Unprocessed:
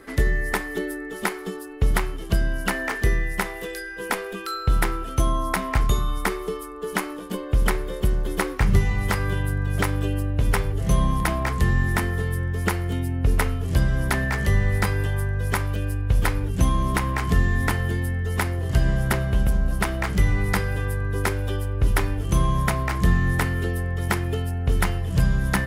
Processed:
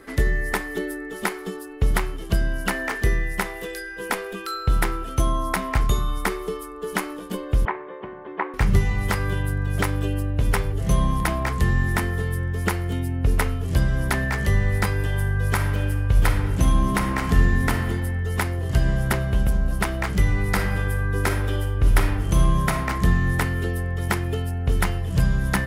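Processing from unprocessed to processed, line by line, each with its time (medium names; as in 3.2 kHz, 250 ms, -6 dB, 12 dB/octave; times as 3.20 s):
7.65–8.54 s: cabinet simulation 400–2100 Hz, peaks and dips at 500 Hz -6 dB, 960 Hz +7 dB, 1.4 kHz -5 dB
14.96–17.80 s: reverb throw, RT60 1.4 s, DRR 5 dB
20.50–22.88 s: reverb throw, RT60 0.91 s, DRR 4.5 dB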